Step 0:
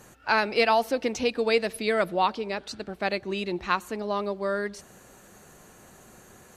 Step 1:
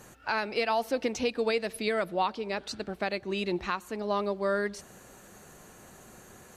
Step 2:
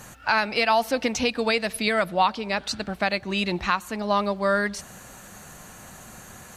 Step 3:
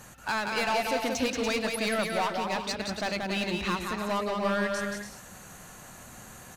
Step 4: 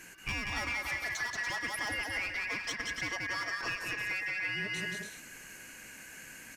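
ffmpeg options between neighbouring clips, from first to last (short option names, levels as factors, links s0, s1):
-af "alimiter=limit=0.141:level=0:latency=1:release=427"
-af "equalizer=f=390:w=1.6:g=-9.5,volume=2.82"
-filter_complex "[0:a]asoftclip=type=hard:threshold=0.1,asplit=2[s0][s1];[s1]aecho=0:1:180|288|352.8|391.7|415:0.631|0.398|0.251|0.158|0.1[s2];[s0][s2]amix=inputs=2:normalize=0,volume=0.562"
-af "afftfilt=real='real(if(lt(b,272),68*(eq(floor(b/68),0)*1+eq(floor(b/68),1)*0+eq(floor(b/68),2)*3+eq(floor(b/68),3)*2)+mod(b,68),b),0)':imag='imag(if(lt(b,272),68*(eq(floor(b/68),0)*1+eq(floor(b/68),1)*0+eq(floor(b/68),2)*3+eq(floor(b/68),3)*2)+mod(b,68),b),0)':win_size=2048:overlap=0.75,acompressor=threshold=0.0316:ratio=6,volume=0.794"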